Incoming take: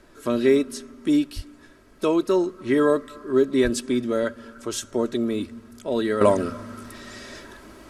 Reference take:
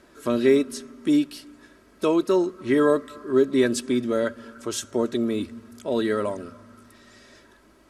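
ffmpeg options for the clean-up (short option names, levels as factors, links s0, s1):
-filter_complex "[0:a]asplit=3[s0][s1][s2];[s0]afade=t=out:st=1.35:d=0.02[s3];[s1]highpass=f=140:w=0.5412,highpass=f=140:w=1.3066,afade=t=in:st=1.35:d=0.02,afade=t=out:st=1.47:d=0.02[s4];[s2]afade=t=in:st=1.47:d=0.02[s5];[s3][s4][s5]amix=inputs=3:normalize=0,asplit=3[s6][s7][s8];[s6]afade=t=out:st=3.63:d=0.02[s9];[s7]highpass=f=140:w=0.5412,highpass=f=140:w=1.3066,afade=t=in:st=3.63:d=0.02,afade=t=out:st=3.75:d=0.02[s10];[s8]afade=t=in:st=3.75:d=0.02[s11];[s9][s10][s11]amix=inputs=3:normalize=0,agate=range=0.0891:threshold=0.01,asetnsamples=n=441:p=0,asendcmd='6.21 volume volume -11dB',volume=1"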